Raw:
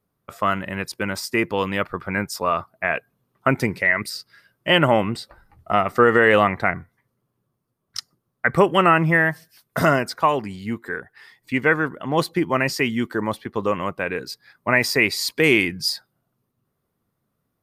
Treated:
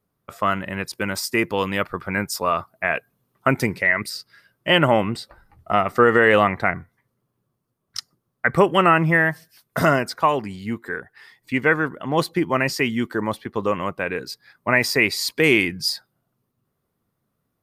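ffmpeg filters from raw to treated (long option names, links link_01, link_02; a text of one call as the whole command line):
ffmpeg -i in.wav -filter_complex "[0:a]asettb=1/sr,asplit=3[link_01][link_02][link_03];[link_01]atrim=end=0.934[link_04];[link_02]atrim=start=0.93:end=3.74,asetpts=PTS-STARTPTS,afade=type=in:duration=0.004:curve=qsin,afade=type=out:start_time=2.806:duration=0.004:curve=qsin,highshelf=frequency=5400:gain=5.5[link_05];[link_03]atrim=start=3.736[link_06];[link_04][link_05]acrossfade=duration=0.004:curve1=hsin:curve2=qsin[link_07];[link_07][link_06]acrossfade=duration=0.004:curve1=qsin:curve2=hsin" out.wav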